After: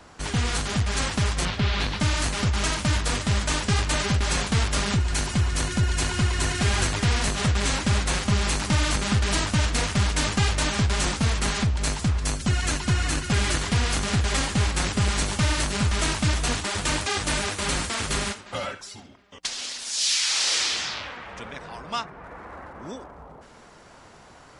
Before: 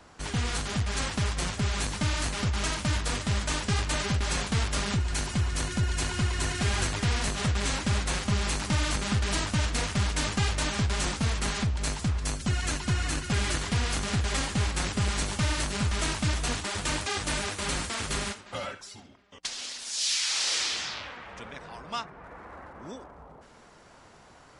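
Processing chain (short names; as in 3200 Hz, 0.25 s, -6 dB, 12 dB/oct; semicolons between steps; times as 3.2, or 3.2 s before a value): 1.45–2 resonant high shelf 5700 Hz -13.5 dB, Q 1.5; gain +4.5 dB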